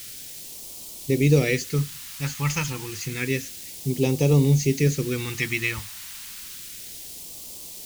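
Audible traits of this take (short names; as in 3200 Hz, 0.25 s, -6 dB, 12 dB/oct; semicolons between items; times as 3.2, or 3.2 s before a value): a quantiser's noise floor 6-bit, dither triangular; phasing stages 2, 0.3 Hz, lowest notch 430–1500 Hz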